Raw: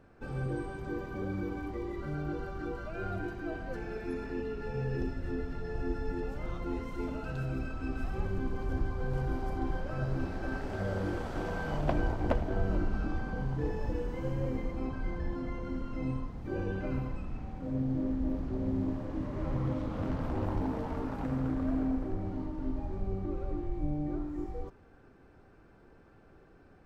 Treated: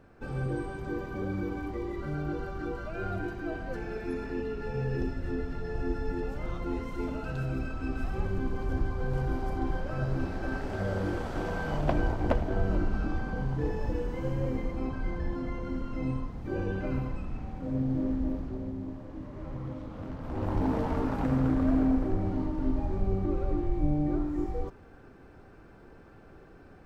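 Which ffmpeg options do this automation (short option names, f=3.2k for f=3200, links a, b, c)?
-af "volume=14dB,afade=t=out:st=18.16:d=0.59:silence=0.398107,afade=t=in:st=20.22:d=0.52:silence=0.266073"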